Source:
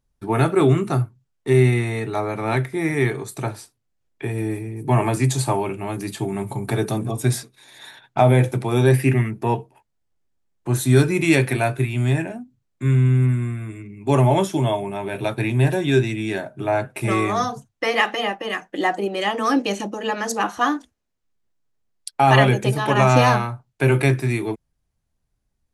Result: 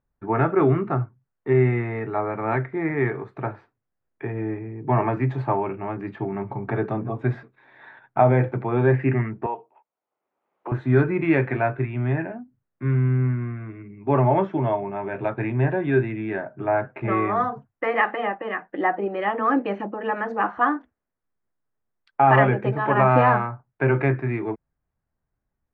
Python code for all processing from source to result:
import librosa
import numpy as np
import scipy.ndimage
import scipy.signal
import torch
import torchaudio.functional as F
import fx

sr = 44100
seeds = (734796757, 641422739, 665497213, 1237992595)

y = fx.chain(x, sr, fx.highpass(hz=520.0, slope=12),
    fx.peak_eq(hz=1700.0, db=-12.0, octaves=0.51),
    fx.band_squash(depth_pct=70), at=(9.46, 10.72))
y = scipy.signal.sosfilt(scipy.signal.butter(4, 1800.0, 'lowpass', fs=sr, output='sos'), y)
y = fx.tilt_eq(y, sr, slope=1.5)